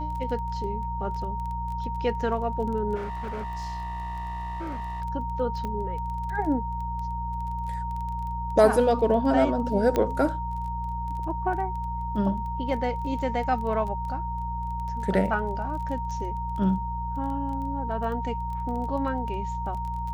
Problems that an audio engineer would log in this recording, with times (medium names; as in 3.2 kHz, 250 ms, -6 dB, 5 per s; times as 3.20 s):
crackle 15 per s -34 dBFS
hum 60 Hz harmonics 3 -33 dBFS
whine 930 Hz -31 dBFS
2.95–5.02 s: clipped -29.5 dBFS
5.65 s: pop -21 dBFS
9.96 s: pop -12 dBFS